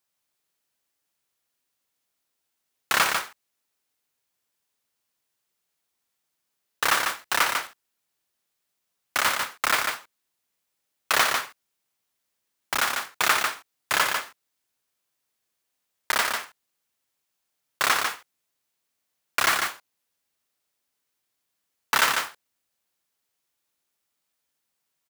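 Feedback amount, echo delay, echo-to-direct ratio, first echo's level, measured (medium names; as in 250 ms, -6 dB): no regular repeats, 62 ms, -4.5 dB, -12.5 dB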